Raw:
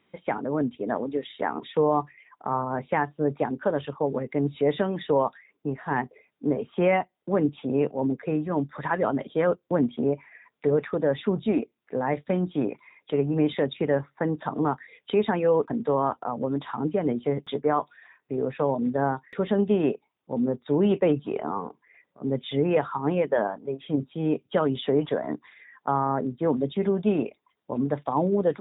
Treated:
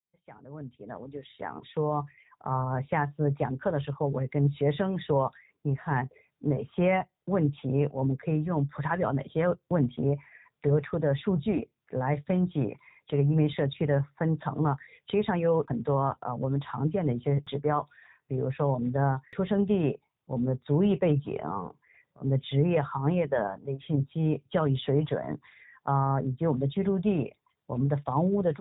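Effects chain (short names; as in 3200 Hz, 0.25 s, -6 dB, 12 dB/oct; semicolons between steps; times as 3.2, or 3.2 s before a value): opening faded in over 2.74 s; resonant low shelf 180 Hz +9 dB, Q 1.5; gain -3 dB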